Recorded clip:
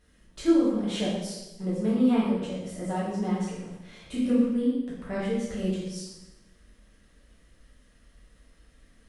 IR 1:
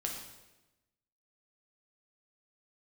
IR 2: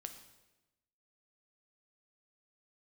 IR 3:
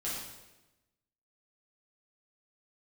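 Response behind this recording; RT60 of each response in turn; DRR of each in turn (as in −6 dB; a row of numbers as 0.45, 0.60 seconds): 3; 1.0, 1.0, 1.0 seconds; −0.5, 6.0, −8.5 decibels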